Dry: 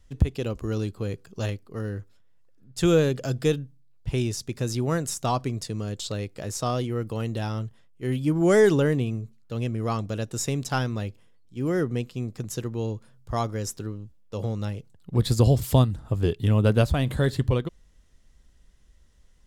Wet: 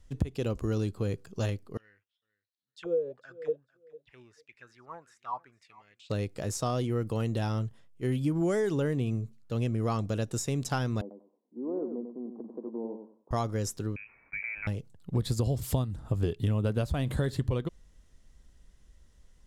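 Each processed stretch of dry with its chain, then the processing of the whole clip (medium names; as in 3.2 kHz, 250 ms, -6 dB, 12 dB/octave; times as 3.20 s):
1.77–6.10 s: auto-wah 480–4300 Hz, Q 9.7, down, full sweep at -17 dBFS + bass shelf 96 Hz +12 dB + feedback delay 449 ms, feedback 19%, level -21 dB
11.01–13.31 s: Chebyshev band-pass 220–1000 Hz, order 4 + compression 1.5:1, threshold -42 dBFS + feedback delay 96 ms, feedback 22%, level -7 dB
13.96–14.67 s: high-pass 380 Hz 24 dB/octave + frequency inversion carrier 2.8 kHz + level flattener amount 50%
whole clip: peaking EQ 9.1 kHz +8 dB 2.4 oct; compression 12:1, threshold -24 dBFS; treble shelf 2.3 kHz -9 dB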